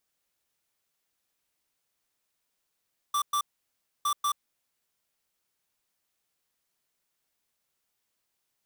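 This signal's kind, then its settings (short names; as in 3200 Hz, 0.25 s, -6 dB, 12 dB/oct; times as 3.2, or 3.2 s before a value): beep pattern square 1170 Hz, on 0.08 s, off 0.11 s, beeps 2, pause 0.64 s, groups 2, -26.5 dBFS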